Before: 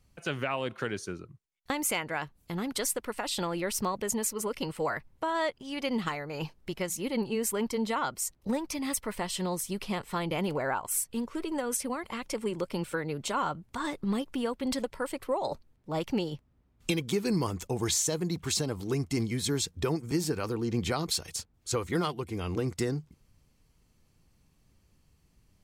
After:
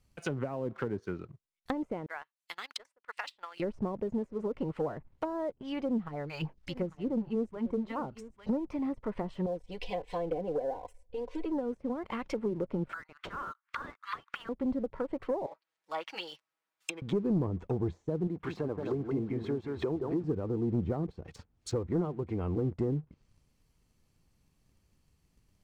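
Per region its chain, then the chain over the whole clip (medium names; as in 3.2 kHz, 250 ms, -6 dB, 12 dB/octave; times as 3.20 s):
2.06–3.60 s: high-pass 1.4 kHz + transient shaper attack +4 dB, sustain -12 dB
5.82–8.49 s: phase shifter stages 2, 3.3 Hz, lowest notch 260–4200 Hz + delay 848 ms -17 dB
9.46–11.46 s: treble shelf 8.8 kHz -3.5 dB + static phaser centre 540 Hz, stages 4 + comb 4 ms, depth 87%
12.89–14.49 s: steep high-pass 1.2 kHz 48 dB/octave + treble shelf 4.8 kHz +9 dB + overdrive pedal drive 24 dB, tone 1.9 kHz, clips at -15 dBFS
15.46–17.02 s: high-pass 1.1 kHz + comb 6.2 ms, depth 83%
18.27–20.24 s: tone controls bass -9 dB, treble -10 dB + echo whose repeats swap between lows and highs 176 ms, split 1.6 kHz, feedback 50%, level -5 dB + tape noise reduction on one side only encoder only
whole clip: low-pass that closes with the level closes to 520 Hz, closed at -28.5 dBFS; waveshaping leveller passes 1; trim -2.5 dB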